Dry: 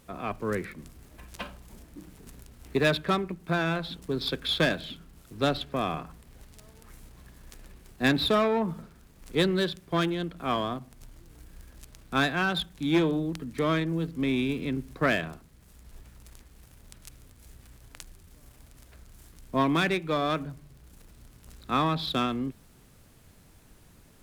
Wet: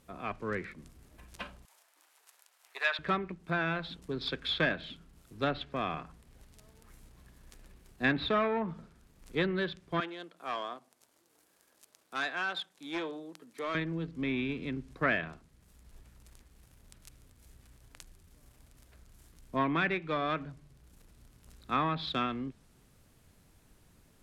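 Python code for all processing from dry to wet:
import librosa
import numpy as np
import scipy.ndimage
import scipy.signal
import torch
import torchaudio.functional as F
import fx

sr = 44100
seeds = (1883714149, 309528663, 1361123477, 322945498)

y = fx.chain(x, sr, fx.highpass(hz=730.0, slope=24),
    fx.room_flutter(wall_m=11.3, rt60_s=0.26), at=(1.65, 2.99))
y = fx.chain(y, sr, fx.highpass(hz=490.0, slope=12),
    fx.peak_eq(hz=2200.0, db=-4.0, octaves=2.0),
    fx.clip_hard(threshold_db=-24.5), at=(10.0, 13.75))
y = fx.env_lowpass_down(y, sr, base_hz=2700.0, full_db=-21.5)
y = fx.dynamic_eq(y, sr, hz=1900.0, q=0.85, threshold_db=-42.0, ratio=4.0, max_db=6)
y = y * 10.0 ** (-6.5 / 20.0)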